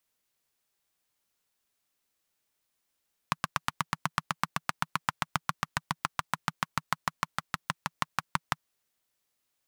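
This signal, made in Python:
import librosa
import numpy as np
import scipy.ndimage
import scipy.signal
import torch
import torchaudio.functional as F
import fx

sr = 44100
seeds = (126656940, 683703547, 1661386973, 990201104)

y = fx.engine_single_rev(sr, seeds[0], length_s=5.33, rpm=1000, resonances_hz=(160.0, 1100.0), end_rpm=700)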